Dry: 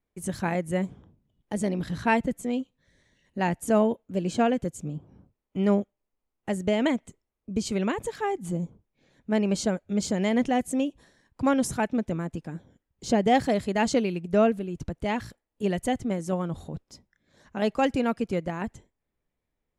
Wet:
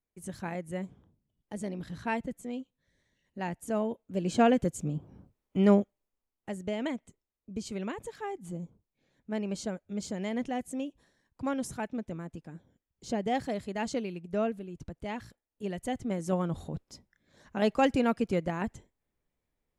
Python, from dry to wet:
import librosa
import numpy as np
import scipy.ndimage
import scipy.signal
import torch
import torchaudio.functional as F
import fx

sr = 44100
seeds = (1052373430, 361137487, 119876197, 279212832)

y = fx.gain(x, sr, db=fx.line((3.83, -9.0), (4.49, 1.0), (5.72, 1.0), (6.54, -9.0), (15.75, -9.0), (16.35, -1.0)))